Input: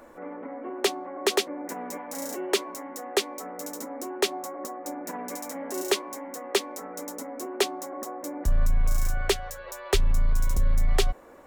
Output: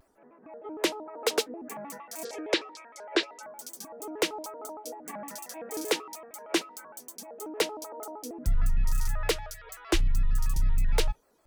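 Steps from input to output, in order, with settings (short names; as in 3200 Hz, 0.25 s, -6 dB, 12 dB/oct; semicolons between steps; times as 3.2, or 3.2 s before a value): spectral noise reduction 16 dB; 2.25–3.43 speaker cabinet 400–7900 Hz, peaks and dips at 490 Hz +9 dB, 1000 Hz -4 dB, 2000 Hz +6 dB, 4700 Hz +6 dB, 7400 Hz -9 dB; shaped vibrato square 6.5 Hz, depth 250 cents; gain -2.5 dB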